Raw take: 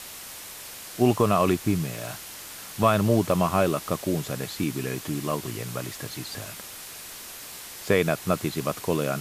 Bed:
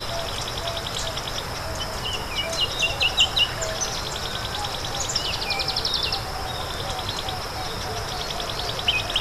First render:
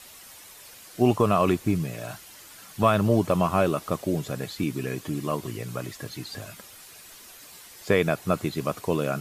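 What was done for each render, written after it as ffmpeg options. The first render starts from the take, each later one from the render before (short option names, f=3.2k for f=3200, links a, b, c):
-af "afftdn=nr=9:nf=-41"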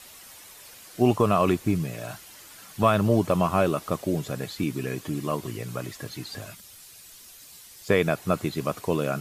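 -filter_complex "[0:a]asettb=1/sr,asplit=3[a][b][c];[a]atrim=end=6.554[d];[b]atrim=start=6.55:end=7.89,asetpts=PTS-STARTPTS,afade=t=in:d=0.004:c=qsin,afade=t=out:st=1.336:d=0.004:c=qsin,acrossover=split=180|3000[e][f][g];[f]acompressor=threshold=-59dB:ratio=6:attack=3.2:release=140:knee=2.83:detection=peak[h];[e][h][g]amix=inputs=3:normalize=0[i];[c]atrim=start=7.886[j];[d][i]acrossfade=d=0.004:c1=hsin:c2=qsin[k];[k][j]acrossfade=d=0.004:c1=qsin:c2=hsin"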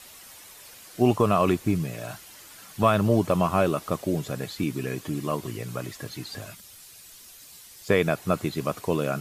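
-af anull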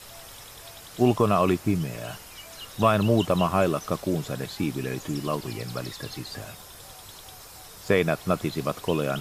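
-filter_complex "[1:a]volume=-19dB[a];[0:a][a]amix=inputs=2:normalize=0"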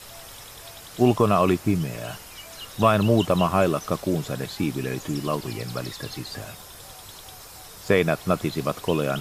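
-af "volume=2dB"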